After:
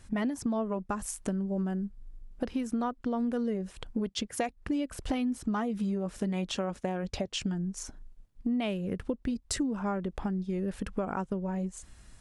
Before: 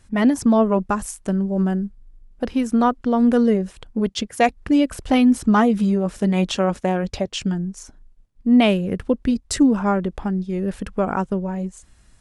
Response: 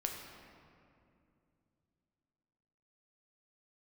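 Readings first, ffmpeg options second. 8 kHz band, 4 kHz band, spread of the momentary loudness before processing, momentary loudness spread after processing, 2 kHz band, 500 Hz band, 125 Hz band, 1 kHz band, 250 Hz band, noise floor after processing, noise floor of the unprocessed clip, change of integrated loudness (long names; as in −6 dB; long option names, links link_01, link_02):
−6.5 dB, −9.5 dB, 10 LU, 5 LU, −13.0 dB, −13.0 dB, −10.5 dB, −14.0 dB, −13.0 dB, −58 dBFS, −55 dBFS, −13.0 dB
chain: -af "acompressor=threshold=-30dB:ratio=5"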